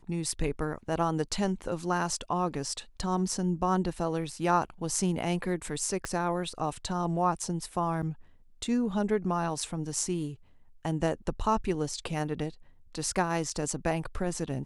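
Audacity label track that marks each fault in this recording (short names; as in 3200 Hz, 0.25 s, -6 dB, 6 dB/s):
6.050000	6.050000	pop -19 dBFS
8.020000	8.030000	gap 6.4 ms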